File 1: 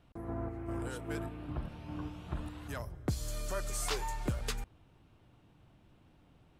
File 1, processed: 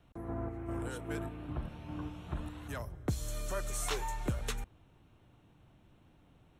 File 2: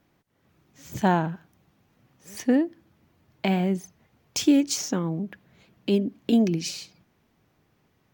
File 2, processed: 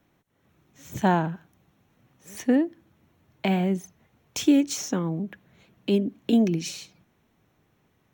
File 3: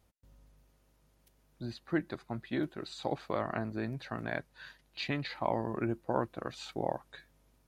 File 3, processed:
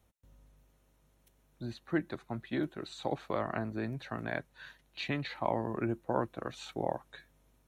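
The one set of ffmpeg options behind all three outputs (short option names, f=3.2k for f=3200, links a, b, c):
-filter_complex "[0:a]bandreject=f=4.8k:w=6.1,acrossover=split=350|880|3200[a][b][c][d];[d]asoftclip=type=tanh:threshold=-25.5dB[e];[a][b][c][e]amix=inputs=4:normalize=0"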